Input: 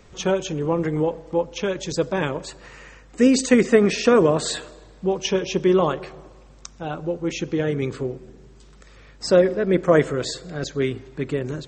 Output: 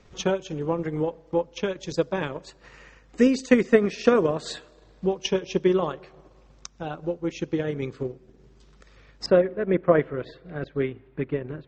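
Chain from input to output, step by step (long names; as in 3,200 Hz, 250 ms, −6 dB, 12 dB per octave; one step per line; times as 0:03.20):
transient designer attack +5 dB, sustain −6 dB
low-pass filter 6,700 Hz 24 dB per octave, from 0:09.26 2,900 Hz
level −5.5 dB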